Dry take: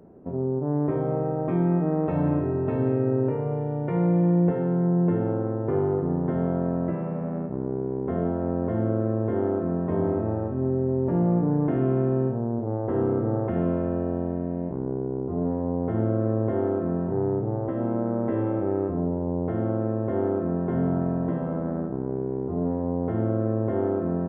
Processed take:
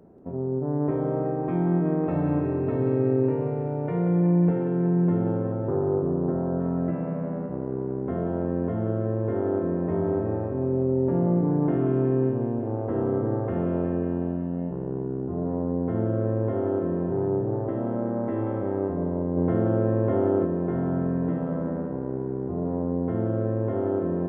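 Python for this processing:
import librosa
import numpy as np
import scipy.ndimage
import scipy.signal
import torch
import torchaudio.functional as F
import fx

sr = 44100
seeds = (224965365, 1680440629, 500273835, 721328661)

y = fx.lowpass(x, sr, hz=1400.0, slope=24, at=(5.52, 6.6))
y = fx.echo_thinned(y, sr, ms=184, feedback_pct=72, hz=180.0, wet_db=-8)
y = fx.env_flatten(y, sr, amount_pct=50, at=(19.36, 20.44), fade=0.02)
y = y * 10.0 ** (-2.0 / 20.0)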